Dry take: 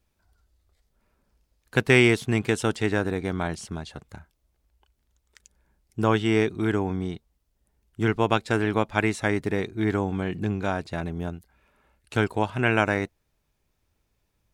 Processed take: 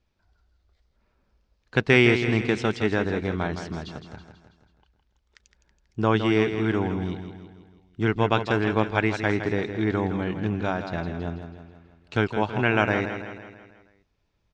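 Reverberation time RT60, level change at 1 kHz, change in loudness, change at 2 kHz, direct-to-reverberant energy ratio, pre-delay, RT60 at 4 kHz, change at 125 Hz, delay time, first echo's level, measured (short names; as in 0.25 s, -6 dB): none, +0.5 dB, +0.5 dB, +0.5 dB, none, none, none, +0.5 dB, 0.163 s, -9.0 dB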